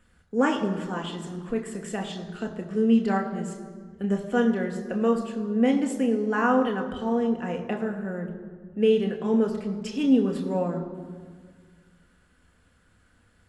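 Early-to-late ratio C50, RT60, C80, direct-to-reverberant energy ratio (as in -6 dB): 9.0 dB, 1.7 s, 10.0 dB, 2.5 dB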